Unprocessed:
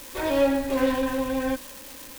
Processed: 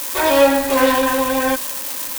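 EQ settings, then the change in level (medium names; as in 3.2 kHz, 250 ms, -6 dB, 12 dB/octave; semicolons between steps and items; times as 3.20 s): tilt EQ +1.5 dB/octave; peaking EQ 1 kHz +6.5 dB 1.5 oct; treble shelf 4.1 kHz +5.5 dB; +7.0 dB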